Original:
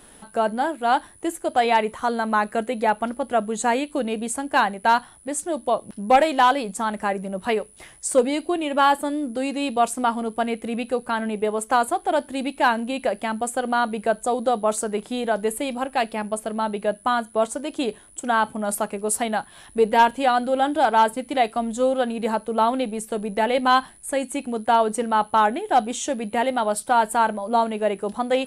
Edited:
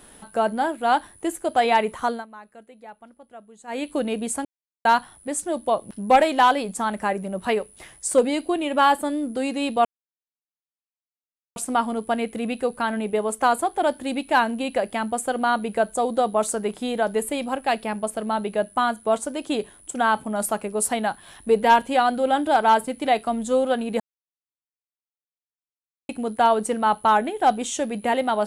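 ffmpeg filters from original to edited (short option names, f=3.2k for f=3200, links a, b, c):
-filter_complex "[0:a]asplit=8[a][b][c][d][e][f][g][h];[a]atrim=end=2.26,asetpts=PTS-STARTPTS,afade=t=out:st=2.06:d=0.2:silence=0.0794328[i];[b]atrim=start=2.26:end=3.67,asetpts=PTS-STARTPTS,volume=-22dB[j];[c]atrim=start=3.67:end=4.45,asetpts=PTS-STARTPTS,afade=t=in:d=0.2:silence=0.0794328,afade=t=out:st=0.776:d=0.004:c=hsin[k];[d]atrim=start=4.45:end=4.85,asetpts=PTS-STARTPTS,volume=0[l];[e]atrim=start=4.85:end=9.85,asetpts=PTS-STARTPTS,afade=t=in:d=0.004:c=hsin,afade=t=out:st=4.996:d=0.004:c=hsin,apad=pad_dur=1.71[m];[f]atrim=start=9.85:end=22.29,asetpts=PTS-STARTPTS,afade=t=in:d=0.004:c=hsin,afade=t=out:st=12.436:d=0.004:c=hsin[n];[g]atrim=start=22.29:end=24.38,asetpts=PTS-STARTPTS,volume=0[o];[h]atrim=start=24.38,asetpts=PTS-STARTPTS,afade=t=in:d=0.004:c=hsin[p];[i][j][k][l][m][n][o][p]concat=n=8:v=0:a=1"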